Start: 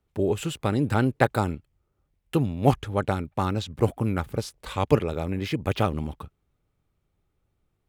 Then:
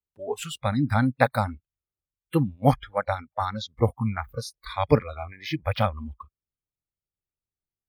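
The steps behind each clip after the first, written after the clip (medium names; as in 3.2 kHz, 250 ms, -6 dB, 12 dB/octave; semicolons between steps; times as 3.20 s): spectral noise reduction 26 dB; trim +1.5 dB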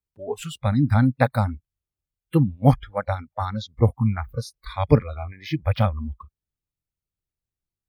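bass shelf 300 Hz +9.5 dB; trim -2 dB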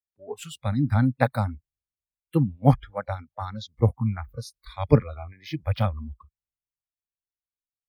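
three bands expanded up and down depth 40%; trim -4 dB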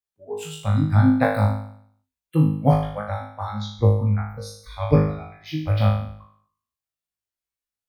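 flutter echo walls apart 3.3 m, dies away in 0.62 s; trim -1 dB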